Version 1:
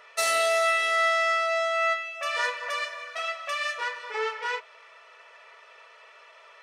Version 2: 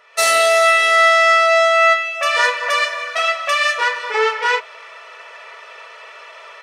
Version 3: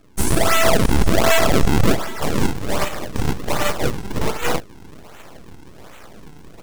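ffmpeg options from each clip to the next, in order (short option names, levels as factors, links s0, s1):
-af "dynaudnorm=f=110:g=3:m=4.73"
-filter_complex "[0:a]acrossover=split=330|6800[s0][s1][s2];[s1]acrusher=samples=42:mix=1:aa=0.000001:lfo=1:lforange=67.2:lforate=1.3[s3];[s0][s3][s2]amix=inputs=3:normalize=0,aeval=exprs='abs(val(0))':c=same"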